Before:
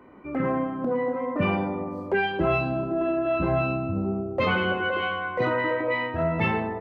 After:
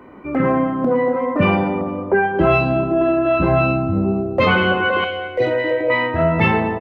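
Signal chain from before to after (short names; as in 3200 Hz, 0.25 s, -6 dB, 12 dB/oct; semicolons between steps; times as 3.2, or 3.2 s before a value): 1.81–2.39 LPF 1700 Hz 24 dB/oct; 5.04–5.9 fixed phaser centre 470 Hz, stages 4; feedback echo 0.231 s, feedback 43%, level -18.5 dB; gain +8.5 dB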